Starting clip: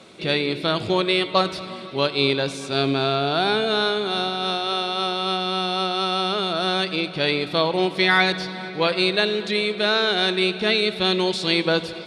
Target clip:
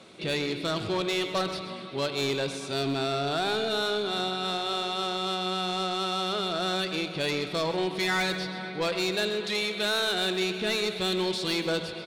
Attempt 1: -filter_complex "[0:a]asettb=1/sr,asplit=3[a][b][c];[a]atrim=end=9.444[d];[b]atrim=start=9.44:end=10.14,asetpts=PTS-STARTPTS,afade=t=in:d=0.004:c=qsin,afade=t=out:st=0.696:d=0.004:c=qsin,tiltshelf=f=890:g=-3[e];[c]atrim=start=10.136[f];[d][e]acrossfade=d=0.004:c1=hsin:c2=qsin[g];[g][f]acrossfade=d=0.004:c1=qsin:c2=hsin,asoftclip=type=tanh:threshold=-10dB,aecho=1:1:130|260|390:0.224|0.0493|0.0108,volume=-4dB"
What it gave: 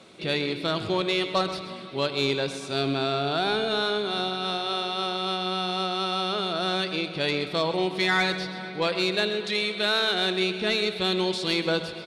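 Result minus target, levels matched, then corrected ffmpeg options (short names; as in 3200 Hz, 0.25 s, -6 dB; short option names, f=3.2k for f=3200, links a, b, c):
soft clip: distortion -10 dB
-filter_complex "[0:a]asettb=1/sr,asplit=3[a][b][c];[a]atrim=end=9.444[d];[b]atrim=start=9.44:end=10.14,asetpts=PTS-STARTPTS,afade=t=in:d=0.004:c=qsin,afade=t=out:st=0.696:d=0.004:c=qsin,tiltshelf=f=890:g=-3[e];[c]atrim=start=10.136[f];[d][e]acrossfade=d=0.004:c1=hsin:c2=qsin[g];[g][f]acrossfade=d=0.004:c1=qsin:c2=hsin,asoftclip=type=tanh:threshold=-18.5dB,aecho=1:1:130|260|390:0.224|0.0493|0.0108,volume=-4dB"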